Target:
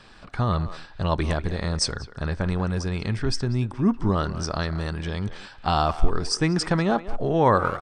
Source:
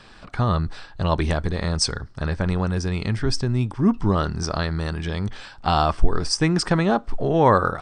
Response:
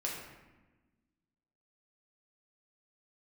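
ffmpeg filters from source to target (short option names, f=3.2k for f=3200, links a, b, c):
-filter_complex "[0:a]asplit=2[a][b];[b]adelay=190,highpass=300,lowpass=3.4k,asoftclip=type=hard:threshold=-13.5dB,volume=-13dB[c];[a][c]amix=inputs=2:normalize=0,volume=-2.5dB"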